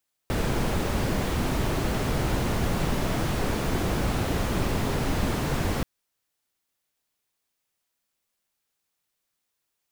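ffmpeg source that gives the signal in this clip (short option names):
-f lavfi -i "anoisesrc=c=brown:a=0.263:d=5.53:r=44100:seed=1"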